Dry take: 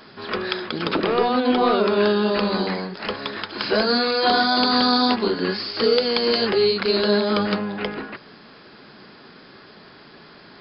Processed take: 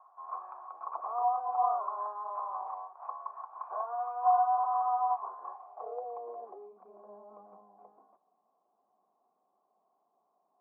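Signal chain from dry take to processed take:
band-pass filter sweep 1,100 Hz → 200 Hz, 0:05.37–0:06.90
formant resonators in series a
three-way crossover with the lows and the highs turned down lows −24 dB, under 420 Hz, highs −23 dB, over 2,000 Hz
level +5 dB

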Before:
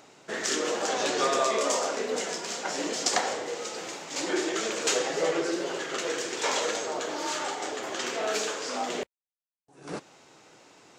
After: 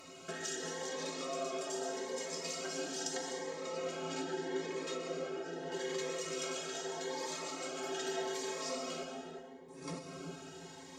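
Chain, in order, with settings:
0:03.40–0:05.72: low-pass filter 1,900 Hz 6 dB per octave
downward compressor 12 to 1, threshold −40 dBFS, peak gain reduction 19.5 dB
stiff-string resonator 79 Hz, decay 0.29 s, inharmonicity 0.03
feedback echo with a low-pass in the loop 357 ms, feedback 33%, low-pass 1,100 Hz, level −4.5 dB
dense smooth reverb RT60 1.6 s, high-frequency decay 0.65×, pre-delay 115 ms, DRR 5 dB
phaser whose notches keep moving one way rising 0.8 Hz
level +11.5 dB

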